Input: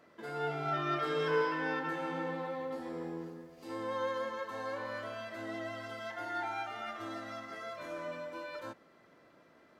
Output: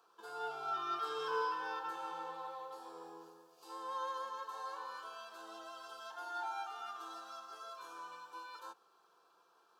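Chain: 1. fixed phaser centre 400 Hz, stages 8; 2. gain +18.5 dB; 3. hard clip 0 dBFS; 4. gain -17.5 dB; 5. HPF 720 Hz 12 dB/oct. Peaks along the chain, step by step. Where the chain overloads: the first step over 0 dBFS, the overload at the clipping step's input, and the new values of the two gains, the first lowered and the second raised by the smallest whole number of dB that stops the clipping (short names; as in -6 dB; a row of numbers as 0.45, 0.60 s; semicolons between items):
-21.0, -2.5, -2.5, -20.0, -24.5 dBFS; no overload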